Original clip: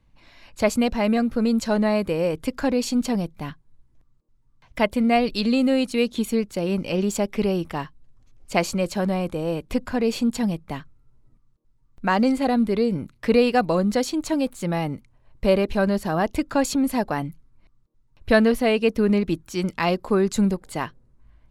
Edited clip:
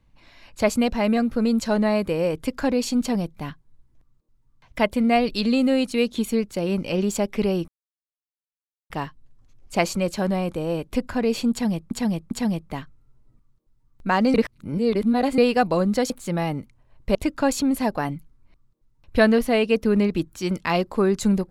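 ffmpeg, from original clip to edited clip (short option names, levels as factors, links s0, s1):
-filter_complex "[0:a]asplit=8[s0][s1][s2][s3][s4][s5][s6][s7];[s0]atrim=end=7.68,asetpts=PTS-STARTPTS,afade=t=out:st=7.676:d=0.004:c=hsin,apad=pad_dur=1.22[s8];[s1]atrim=start=7.68:end=10.692,asetpts=PTS-STARTPTS,afade=t=in:d=0.004:c=hsin[s9];[s2]atrim=start=10.288:end=10.692[s10];[s3]atrim=start=10.288:end=12.322[s11];[s4]atrim=start=12.318:end=13.362,asetpts=PTS-STARTPTS,areverse[s12];[s5]atrim=start=13.358:end=14.082[s13];[s6]atrim=start=14.448:end=15.502[s14];[s7]atrim=start=16.278[s15];[s8][s9]concat=n=2:v=0:a=1[s16];[s16][s10]acrossfade=d=0.004:c1=hsin:c2=hsin[s17];[s17][s11]acrossfade=d=0.004:c1=hsin:c2=hsin[s18];[s18][s12]acrossfade=d=0.004:c1=hsin:c2=hsin[s19];[s19][s13]acrossfade=d=0.004:c1=hsin:c2=hsin[s20];[s20][s14]acrossfade=d=0.004:c1=hsin:c2=hsin[s21];[s21][s15]acrossfade=d=0.004:c1=hsin:c2=hsin"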